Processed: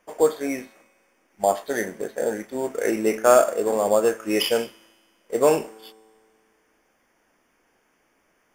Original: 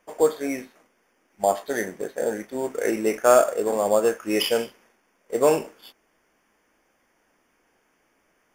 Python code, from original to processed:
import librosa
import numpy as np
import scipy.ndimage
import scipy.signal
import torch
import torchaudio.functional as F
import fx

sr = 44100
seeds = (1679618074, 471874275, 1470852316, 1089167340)

y = fx.comb_fb(x, sr, f0_hz=110.0, decay_s=1.9, harmonics='all', damping=0.0, mix_pct=40)
y = y * librosa.db_to_amplitude(5.0)